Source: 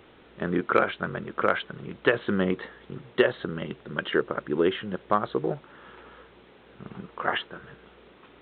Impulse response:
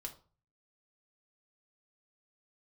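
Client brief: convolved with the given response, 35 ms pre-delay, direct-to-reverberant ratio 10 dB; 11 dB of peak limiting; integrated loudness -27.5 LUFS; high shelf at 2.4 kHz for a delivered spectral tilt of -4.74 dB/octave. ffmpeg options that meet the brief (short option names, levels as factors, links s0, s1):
-filter_complex "[0:a]highshelf=f=2400:g=-8,alimiter=limit=0.112:level=0:latency=1,asplit=2[s0][s1];[1:a]atrim=start_sample=2205,adelay=35[s2];[s1][s2]afir=irnorm=-1:irlink=0,volume=0.473[s3];[s0][s3]amix=inputs=2:normalize=0,volume=2"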